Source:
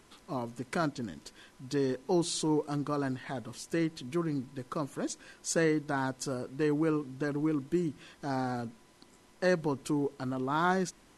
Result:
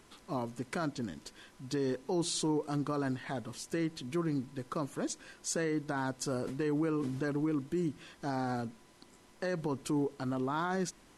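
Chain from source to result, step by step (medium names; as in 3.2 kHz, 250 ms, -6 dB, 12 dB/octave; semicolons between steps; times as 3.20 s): peak limiter -25 dBFS, peak gain reduction 9 dB; 6.27–7.30 s: decay stretcher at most 32 dB/s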